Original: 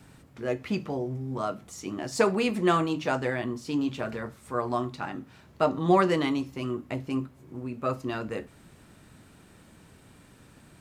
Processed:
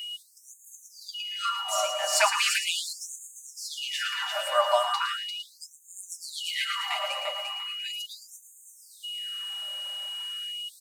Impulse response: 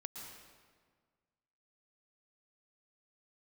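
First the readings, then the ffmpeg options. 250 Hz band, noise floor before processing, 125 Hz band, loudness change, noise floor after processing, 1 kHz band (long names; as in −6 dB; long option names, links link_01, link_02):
below −40 dB, −55 dBFS, below −40 dB, +0.5 dB, −55 dBFS, +0.5 dB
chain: -filter_complex "[0:a]aecho=1:1:5.1:0.96,aecho=1:1:346|692|1038|1384:0.562|0.191|0.065|0.0221,aeval=exprs='val(0)+0.0112*sin(2*PI*2900*n/s)':channel_layout=same,crystalizer=i=1:c=0,asplit=2[link_01][link_02];[1:a]atrim=start_sample=2205,adelay=112[link_03];[link_02][link_03]afir=irnorm=-1:irlink=0,volume=-2.5dB[link_04];[link_01][link_04]amix=inputs=2:normalize=0,afftfilt=real='re*gte(b*sr/1024,490*pow(6400/490,0.5+0.5*sin(2*PI*0.38*pts/sr)))':imag='im*gte(b*sr/1024,490*pow(6400/490,0.5+0.5*sin(2*PI*0.38*pts/sr)))':win_size=1024:overlap=0.75,volume=3.5dB"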